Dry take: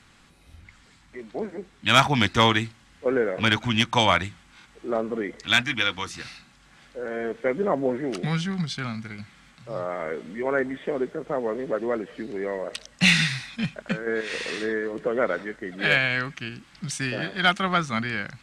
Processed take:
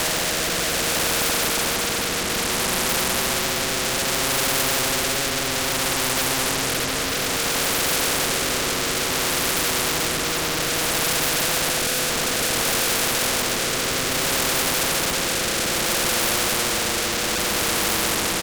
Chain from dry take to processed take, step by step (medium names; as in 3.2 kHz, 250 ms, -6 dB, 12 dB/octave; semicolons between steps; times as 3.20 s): hard clipper -25 dBFS, distortion -5 dB; steep low-pass 770 Hz; comb 6 ms, depth 38%; Paulstretch 8.7×, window 0.50 s, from 9.99 s; reverberation RT60 1.0 s, pre-delay 3 ms, DRR 7.5 dB; in parallel at -6.5 dB: fuzz box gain 51 dB, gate -54 dBFS; on the sum: rotary cabinet horn 0.6 Hz; spectrum-flattening compressor 4:1; trim +5 dB